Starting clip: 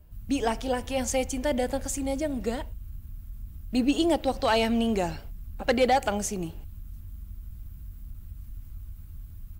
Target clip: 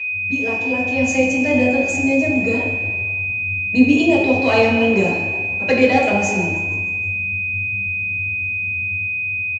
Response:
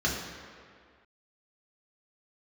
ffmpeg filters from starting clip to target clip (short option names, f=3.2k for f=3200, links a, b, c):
-filter_complex "[0:a]dynaudnorm=f=150:g=11:m=7.5dB,aeval=exprs='val(0)+0.0708*sin(2*PI*2500*n/s)':c=same,aresample=16000,aresample=44100,asplit=6[a][b][c][d][e][f];[b]adelay=156,afreqshift=49,volume=-17dB[g];[c]adelay=312,afreqshift=98,volume=-21.7dB[h];[d]adelay=468,afreqshift=147,volume=-26.5dB[i];[e]adelay=624,afreqshift=196,volume=-31.2dB[j];[f]adelay=780,afreqshift=245,volume=-35.9dB[k];[a][g][h][i][j][k]amix=inputs=6:normalize=0[l];[1:a]atrim=start_sample=2205,asetrate=66150,aresample=44100[m];[l][m]afir=irnorm=-1:irlink=0,volume=-9dB"